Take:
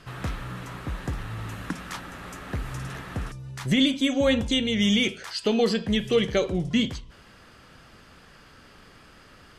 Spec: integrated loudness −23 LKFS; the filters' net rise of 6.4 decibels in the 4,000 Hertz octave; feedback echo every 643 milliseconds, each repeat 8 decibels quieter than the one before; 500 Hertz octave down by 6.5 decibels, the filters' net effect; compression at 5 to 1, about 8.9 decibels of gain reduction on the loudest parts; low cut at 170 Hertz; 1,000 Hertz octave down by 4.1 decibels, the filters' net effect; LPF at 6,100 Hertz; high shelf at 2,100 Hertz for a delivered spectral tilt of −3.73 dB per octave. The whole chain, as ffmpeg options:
ffmpeg -i in.wav -af "highpass=170,lowpass=6100,equalizer=frequency=500:width_type=o:gain=-6.5,equalizer=frequency=1000:width_type=o:gain=-5,highshelf=frequency=2100:gain=3.5,equalizer=frequency=4000:width_type=o:gain=6,acompressor=threshold=-25dB:ratio=5,aecho=1:1:643|1286|1929|2572|3215:0.398|0.159|0.0637|0.0255|0.0102,volume=7.5dB" out.wav

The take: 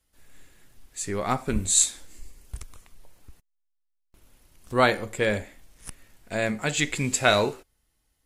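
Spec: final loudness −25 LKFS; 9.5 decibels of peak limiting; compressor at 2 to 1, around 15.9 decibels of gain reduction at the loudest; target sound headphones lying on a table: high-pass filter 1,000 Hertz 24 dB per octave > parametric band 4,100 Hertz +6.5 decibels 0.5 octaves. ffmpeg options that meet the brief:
ffmpeg -i in.wav -af "acompressor=threshold=-45dB:ratio=2,alimiter=level_in=5.5dB:limit=-24dB:level=0:latency=1,volume=-5.5dB,highpass=frequency=1000:width=0.5412,highpass=frequency=1000:width=1.3066,equalizer=frequency=4100:width_type=o:width=0.5:gain=6.5,volume=19dB" out.wav

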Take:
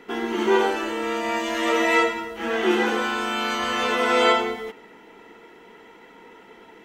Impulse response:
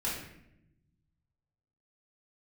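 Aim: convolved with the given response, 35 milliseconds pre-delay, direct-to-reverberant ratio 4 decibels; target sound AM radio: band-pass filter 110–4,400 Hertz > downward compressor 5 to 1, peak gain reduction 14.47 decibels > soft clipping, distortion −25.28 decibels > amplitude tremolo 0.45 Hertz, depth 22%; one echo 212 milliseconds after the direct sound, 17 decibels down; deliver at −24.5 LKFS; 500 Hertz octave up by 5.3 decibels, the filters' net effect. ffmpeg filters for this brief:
-filter_complex "[0:a]equalizer=frequency=500:width_type=o:gain=6.5,aecho=1:1:212:0.141,asplit=2[link_01][link_02];[1:a]atrim=start_sample=2205,adelay=35[link_03];[link_02][link_03]afir=irnorm=-1:irlink=0,volume=-9.5dB[link_04];[link_01][link_04]amix=inputs=2:normalize=0,highpass=110,lowpass=4400,acompressor=threshold=-24dB:ratio=5,asoftclip=threshold=-16dB,tremolo=f=0.45:d=0.22,volume=4dB"

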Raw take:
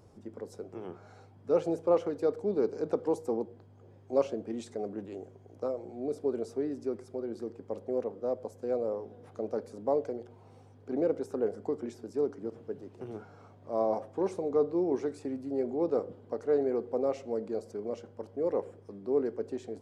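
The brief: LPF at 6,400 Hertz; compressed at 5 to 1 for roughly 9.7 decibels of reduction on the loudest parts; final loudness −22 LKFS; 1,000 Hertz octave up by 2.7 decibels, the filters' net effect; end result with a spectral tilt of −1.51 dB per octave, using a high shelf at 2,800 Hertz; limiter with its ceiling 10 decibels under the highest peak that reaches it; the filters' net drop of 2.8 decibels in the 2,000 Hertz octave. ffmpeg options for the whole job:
ffmpeg -i in.wav -af "lowpass=6400,equalizer=frequency=1000:width_type=o:gain=5.5,equalizer=frequency=2000:width_type=o:gain=-3.5,highshelf=frequency=2800:gain=-8,acompressor=threshold=-31dB:ratio=5,volume=19dB,alimiter=limit=-11dB:level=0:latency=1" out.wav

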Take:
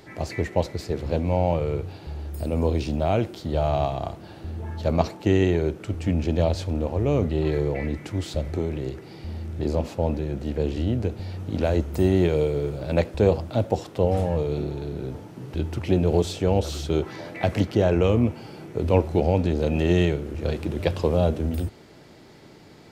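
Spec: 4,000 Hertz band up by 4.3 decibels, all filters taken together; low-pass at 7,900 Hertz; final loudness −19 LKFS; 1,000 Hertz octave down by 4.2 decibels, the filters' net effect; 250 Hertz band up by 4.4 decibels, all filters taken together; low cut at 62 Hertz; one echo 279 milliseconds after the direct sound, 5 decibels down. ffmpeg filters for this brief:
ffmpeg -i in.wav -af "highpass=62,lowpass=7900,equalizer=frequency=250:width_type=o:gain=6.5,equalizer=frequency=1000:width_type=o:gain=-7.5,equalizer=frequency=4000:width_type=o:gain=6,aecho=1:1:279:0.562,volume=3dB" out.wav

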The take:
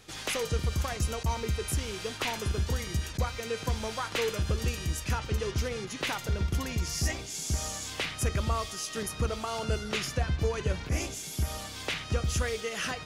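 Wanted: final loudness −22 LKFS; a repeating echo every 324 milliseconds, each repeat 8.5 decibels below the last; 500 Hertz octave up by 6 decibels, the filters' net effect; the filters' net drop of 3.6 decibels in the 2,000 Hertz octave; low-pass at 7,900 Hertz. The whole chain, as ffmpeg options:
ffmpeg -i in.wav -af "lowpass=7900,equalizer=frequency=500:width_type=o:gain=7,equalizer=frequency=2000:width_type=o:gain=-5,aecho=1:1:324|648|972|1296:0.376|0.143|0.0543|0.0206,volume=8dB" out.wav

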